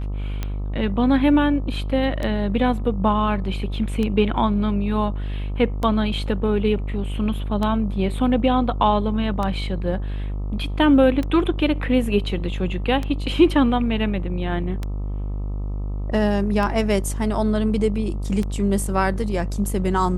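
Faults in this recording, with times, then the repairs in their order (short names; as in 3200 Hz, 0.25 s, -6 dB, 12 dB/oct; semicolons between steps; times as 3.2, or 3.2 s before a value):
buzz 50 Hz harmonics 26 -26 dBFS
tick 33 1/3 rpm -13 dBFS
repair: de-click; de-hum 50 Hz, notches 26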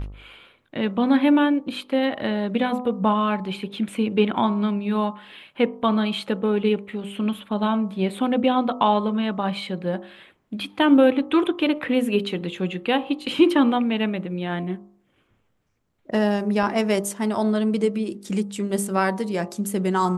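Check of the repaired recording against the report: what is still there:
none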